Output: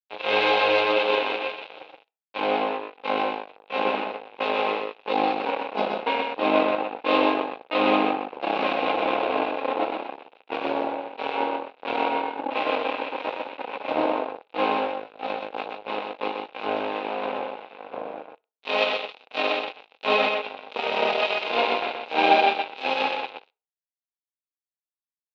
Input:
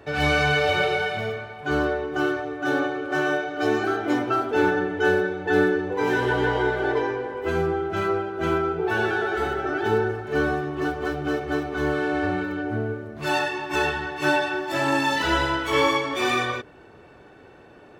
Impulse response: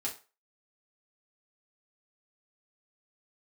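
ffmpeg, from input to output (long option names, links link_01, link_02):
-filter_complex "[0:a]adynamicequalizer=threshold=0.0126:dfrequency=2800:dqfactor=0.85:tfrequency=2800:tqfactor=0.85:attack=5:release=100:ratio=0.375:range=3:mode=cutabove:tftype=bell,asplit=2[link_01][link_02];[link_02]asoftclip=type=hard:threshold=-23.5dB,volume=-6dB[link_03];[link_01][link_03]amix=inputs=2:normalize=0,asetrate=31311,aresample=44100,asoftclip=type=tanh:threshold=-11.5dB,acrusher=bits=2:mix=0:aa=0.5,highpass=450,equalizer=frequency=490:width_type=q:width=4:gain=8,equalizer=frequency=800:width_type=q:width=4:gain=7,equalizer=frequency=1200:width_type=q:width=4:gain=-5,equalizer=frequency=1800:width_type=q:width=4:gain=-9,equalizer=frequency=2600:width_type=q:width=4:gain=10,equalizer=frequency=3800:width_type=q:width=4:gain=7,lowpass=frequency=4100:width=0.5412,lowpass=frequency=4100:width=1.3066,aecho=1:1:125:0.596,asplit=2[link_04][link_05];[1:a]atrim=start_sample=2205[link_06];[link_05][link_06]afir=irnorm=-1:irlink=0,volume=-20.5dB[link_07];[link_04][link_07]amix=inputs=2:normalize=0,volume=1dB"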